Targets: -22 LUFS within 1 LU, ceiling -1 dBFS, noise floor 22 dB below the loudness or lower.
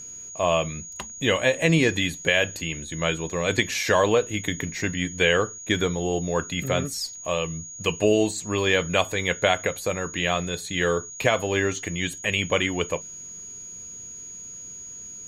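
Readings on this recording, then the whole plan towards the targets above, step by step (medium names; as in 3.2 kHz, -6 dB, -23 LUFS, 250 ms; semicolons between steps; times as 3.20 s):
steady tone 6.7 kHz; tone level -37 dBFS; loudness -24.0 LUFS; peak level -6.0 dBFS; loudness target -22.0 LUFS
-> band-stop 6.7 kHz, Q 30; trim +2 dB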